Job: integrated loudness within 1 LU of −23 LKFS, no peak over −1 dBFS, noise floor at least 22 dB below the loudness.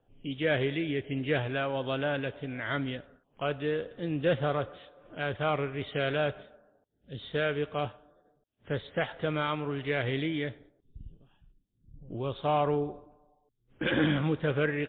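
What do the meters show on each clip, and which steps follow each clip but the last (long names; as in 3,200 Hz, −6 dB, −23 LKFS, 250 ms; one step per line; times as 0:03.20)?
integrated loudness −31.5 LKFS; sample peak −16.5 dBFS; target loudness −23.0 LKFS
→ level +8.5 dB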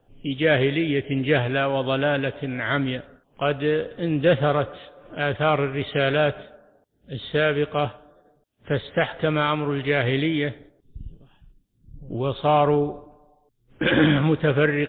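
integrated loudness −23.0 LKFS; sample peak −8.0 dBFS; background noise floor −65 dBFS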